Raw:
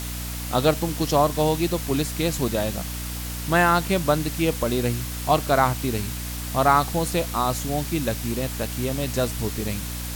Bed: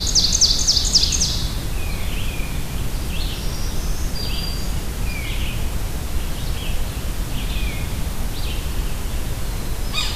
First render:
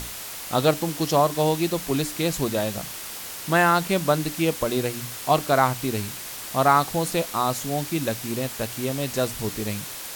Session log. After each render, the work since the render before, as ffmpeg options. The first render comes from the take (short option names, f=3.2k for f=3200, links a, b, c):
-af "bandreject=f=60:t=h:w=6,bandreject=f=120:t=h:w=6,bandreject=f=180:t=h:w=6,bandreject=f=240:t=h:w=6,bandreject=f=300:t=h:w=6"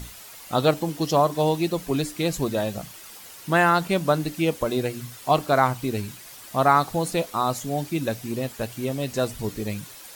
-af "afftdn=nr=10:nf=-36"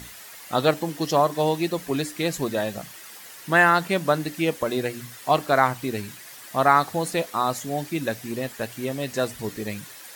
-af "highpass=f=160:p=1,equalizer=f=1.8k:w=3.2:g=6.5"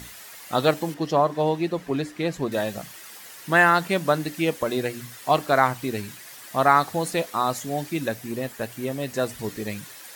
-filter_complex "[0:a]asettb=1/sr,asplit=3[a][b][c];[a]atrim=end=0.944[d];[b]atrim=start=0.94:end=2.52,asetpts=PTS-STARTPTS,afade=t=in:d=0.004:c=qsin,afade=t=out:st=1.576:d=0.004:c=qsin,lowpass=f=2.2k:p=1[e];[c]atrim=start=2.516[f];[d][e]acrossfade=d=0.004:c1=hsin:c2=qsin[g];[g][f]acrossfade=d=0.004:c1=qsin:c2=hsin,asettb=1/sr,asplit=3[h][i][j];[h]atrim=end=8.084[k];[i]atrim=start=8.08:end=9.29,asetpts=PTS-STARTPTS,afade=t=in:d=0.004:c=qsin,afade=t=out:st=1.206:d=0.004:c=qsin,equalizer=f=4.1k:t=o:w=2.3:g=-3[l];[j]atrim=start=9.286[m];[k][l]acrossfade=d=0.004:c1=hsin:c2=qsin[n];[n][m]acrossfade=d=0.004:c1=qsin:c2=hsin"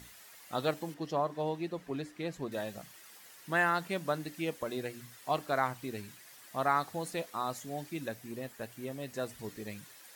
-af "volume=-11.5dB"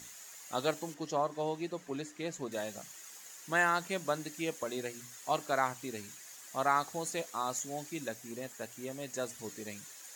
-af "highpass=f=190:p=1,equalizer=f=6.8k:w=3.3:g=14"